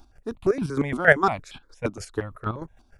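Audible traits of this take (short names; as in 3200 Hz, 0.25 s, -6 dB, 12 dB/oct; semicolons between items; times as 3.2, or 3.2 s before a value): chopped level 6.5 Hz, depth 65%, duty 30%; notches that jump at a steady rate 8.6 Hz 480–1900 Hz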